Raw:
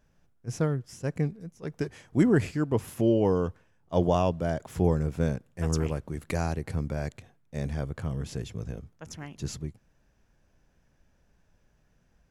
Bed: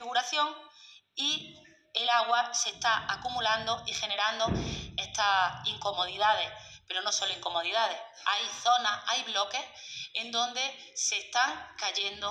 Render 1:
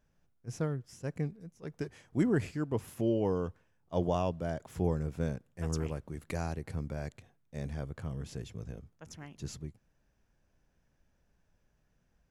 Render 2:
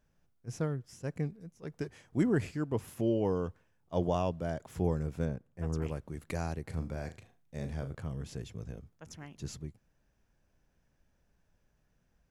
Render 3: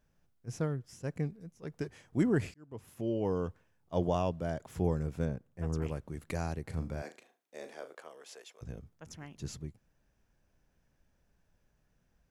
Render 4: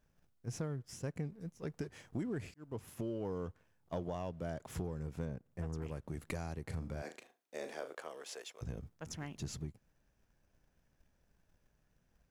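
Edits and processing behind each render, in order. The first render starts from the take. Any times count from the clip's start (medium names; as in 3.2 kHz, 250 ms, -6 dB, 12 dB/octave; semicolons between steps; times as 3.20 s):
trim -6.5 dB
5.25–5.82 s: treble shelf 2.3 kHz -11 dB; 6.68–7.95 s: flutter echo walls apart 6.4 m, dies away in 0.25 s
2.54–3.42 s: fade in; 7.01–8.61 s: high-pass 250 Hz -> 580 Hz 24 dB/octave
compression 6:1, threshold -40 dBFS, peak gain reduction 16 dB; waveshaping leveller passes 1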